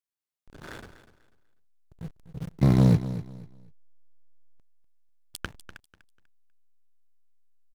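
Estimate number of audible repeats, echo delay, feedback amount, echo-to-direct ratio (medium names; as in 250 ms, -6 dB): 2, 246 ms, 26%, -13.0 dB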